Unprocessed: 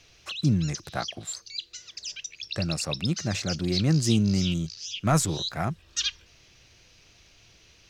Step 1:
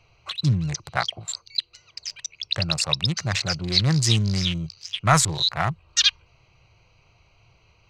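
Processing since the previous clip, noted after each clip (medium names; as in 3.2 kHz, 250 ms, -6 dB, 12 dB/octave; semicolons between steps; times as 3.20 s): local Wiener filter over 25 samples; graphic EQ 125/250/1000/2000/4000/8000 Hz +7/-10/+9/+10/+8/+6 dB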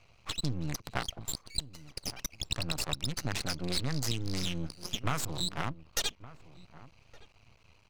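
half-wave rectifier; compression 5:1, threshold -28 dBFS, peak gain reduction 13.5 dB; echo from a far wall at 200 m, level -17 dB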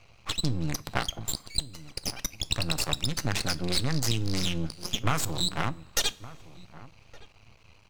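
two-slope reverb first 0.29 s, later 2.1 s, from -18 dB, DRR 15 dB; trim +5 dB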